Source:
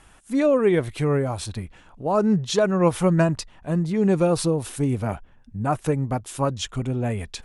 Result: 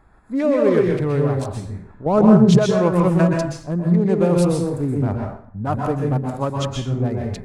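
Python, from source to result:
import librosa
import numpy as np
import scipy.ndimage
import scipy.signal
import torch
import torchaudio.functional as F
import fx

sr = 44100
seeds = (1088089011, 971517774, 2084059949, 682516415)

y = fx.wiener(x, sr, points=15)
y = fx.low_shelf(y, sr, hz=460.0, db=9.5, at=(2.06, 2.58))
y = fx.rev_plate(y, sr, seeds[0], rt60_s=0.59, hf_ratio=0.75, predelay_ms=110, drr_db=0.0)
y = fx.doppler_dist(y, sr, depth_ms=0.16)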